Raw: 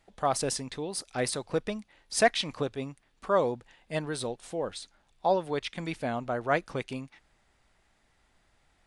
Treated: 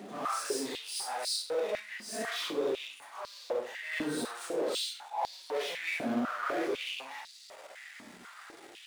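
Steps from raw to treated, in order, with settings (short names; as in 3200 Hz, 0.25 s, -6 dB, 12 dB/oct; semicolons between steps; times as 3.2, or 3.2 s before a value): phase scrambler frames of 0.2 s; reverse; compressor, threshold -37 dBFS, peak gain reduction 17.5 dB; reverse; power-law curve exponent 0.5; Schroeder reverb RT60 0.35 s, combs from 33 ms, DRR 9.5 dB; stepped high-pass 4 Hz 240–4400 Hz; gain -3 dB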